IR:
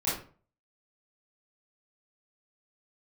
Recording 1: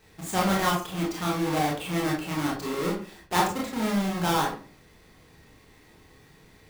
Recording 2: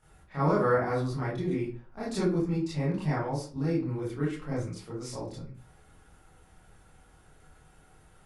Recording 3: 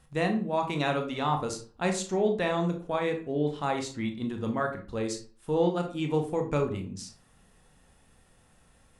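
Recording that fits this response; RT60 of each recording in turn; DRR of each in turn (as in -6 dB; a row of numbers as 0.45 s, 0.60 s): 2; 0.40 s, 0.40 s, 0.40 s; -3.5 dB, -10.5 dB, 3.5 dB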